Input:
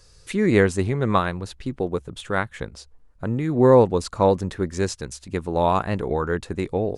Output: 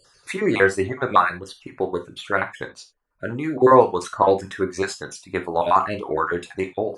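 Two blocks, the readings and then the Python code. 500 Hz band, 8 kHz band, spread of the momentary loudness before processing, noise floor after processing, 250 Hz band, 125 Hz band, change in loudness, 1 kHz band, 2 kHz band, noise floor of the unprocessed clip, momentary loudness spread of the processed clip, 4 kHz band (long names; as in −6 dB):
0.0 dB, −0.5 dB, 15 LU, −59 dBFS, −3.0 dB, −8.5 dB, +1.0 dB, +5.0 dB, +5.0 dB, −53 dBFS, 16 LU, +0.5 dB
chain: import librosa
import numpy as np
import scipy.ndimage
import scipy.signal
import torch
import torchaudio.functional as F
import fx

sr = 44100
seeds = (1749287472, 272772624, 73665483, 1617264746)

y = fx.spec_dropout(x, sr, seeds[0], share_pct=25)
y = fx.highpass(y, sr, hz=230.0, slope=6)
y = fx.dereverb_blind(y, sr, rt60_s=0.79)
y = fx.peak_eq(y, sr, hz=1200.0, db=8.0, octaves=2.3)
y = fx.rev_gated(y, sr, seeds[1], gate_ms=110, shape='falling', drr_db=4.0)
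y = F.gain(torch.from_numpy(y), -1.0).numpy()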